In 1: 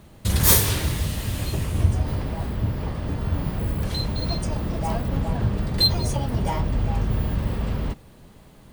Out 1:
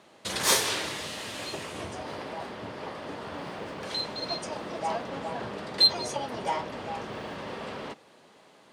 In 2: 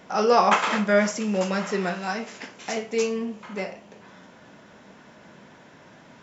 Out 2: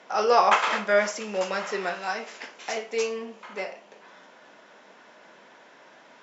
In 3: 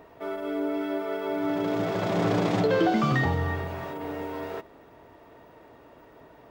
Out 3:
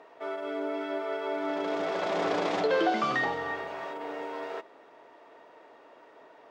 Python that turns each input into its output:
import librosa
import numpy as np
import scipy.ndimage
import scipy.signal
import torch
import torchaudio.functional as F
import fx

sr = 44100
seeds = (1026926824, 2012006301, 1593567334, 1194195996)

y = fx.bandpass_edges(x, sr, low_hz=430.0, high_hz=6800.0)